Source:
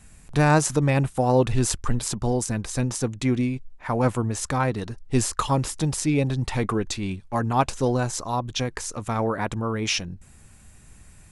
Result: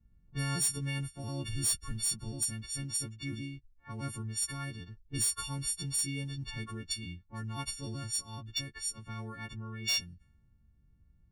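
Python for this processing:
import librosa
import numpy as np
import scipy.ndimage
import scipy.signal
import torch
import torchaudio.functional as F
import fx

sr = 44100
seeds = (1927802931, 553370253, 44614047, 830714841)

p1 = fx.freq_snap(x, sr, grid_st=4)
p2 = fx.env_lowpass(p1, sr, base_hz=500.0, full_db=-17.0)
p3 = fx.tone_stack(p2, sr, knobs='6-0-2')
p4 = fx.notch(p3, sr, hz=6800.0, q=5.7)
p5 = (np.mod(10.0 ** (25.0 / 20.0) * p4 + 1.0, 2.0) - 1.0) / 10.0 ** (25.0 / 20.0)
y = p4 + (p5 * librosa.db_to_amplitude(-10.0))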